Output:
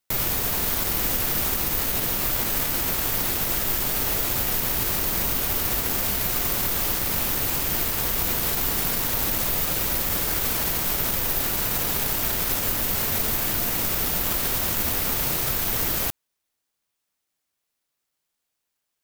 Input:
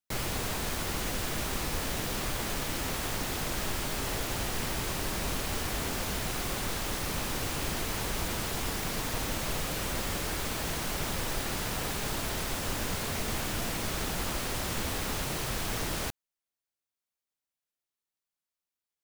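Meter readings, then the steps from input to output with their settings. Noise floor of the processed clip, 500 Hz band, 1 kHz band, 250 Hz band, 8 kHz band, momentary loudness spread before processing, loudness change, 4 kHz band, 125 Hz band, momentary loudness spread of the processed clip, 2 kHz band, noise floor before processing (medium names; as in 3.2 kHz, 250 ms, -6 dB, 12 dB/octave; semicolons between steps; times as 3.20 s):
-80 dBFS, +3.5 dB, +4.0 dB, +3.5 dB, +8.0 dB, 0 LU, +10.5 dB, +5.5 dB, +3.5 dB, 0 LU, +4.5 dB, under -85 dBFS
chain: peak limiter -25.5 dBFS, peak gain reduction 6.5 dB; careless resampling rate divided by 3×, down none, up zero stuff; trim +6 dB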